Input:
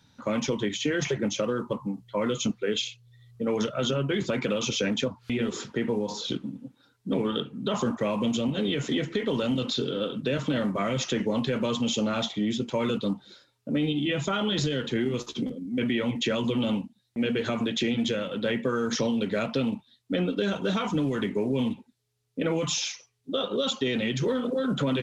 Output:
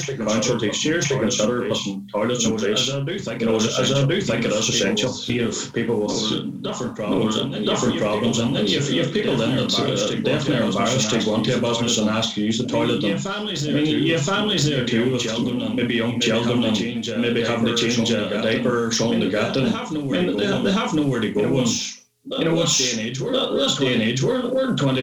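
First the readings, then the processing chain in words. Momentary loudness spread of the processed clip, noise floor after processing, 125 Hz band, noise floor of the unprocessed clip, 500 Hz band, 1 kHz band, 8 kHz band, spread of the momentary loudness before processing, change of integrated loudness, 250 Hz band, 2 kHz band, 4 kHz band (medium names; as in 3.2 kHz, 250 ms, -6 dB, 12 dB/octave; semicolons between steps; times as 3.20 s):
5 LU, -30 dBFS, +8.0 dB, -68 dBFS, +7.5 dB, +7.5 dB, no reading, 6 LU, +7.5 dB, +6.5 dB, +8.0 dB, +9.5 dB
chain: high-pass 52 Hz; treble shelf 5.9 kHz +9.5 dB; hum notches 50/100/150/200/250 Hz; doubling 36 ms -7.5 dB; in parallel at -6 dB: overload inside the chain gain 22 dB; on the sum: bass shelf 67 Hz +10 dB; on a send: reverse echo 1022 ms -5.5 dB; on the sum: trim +2 dB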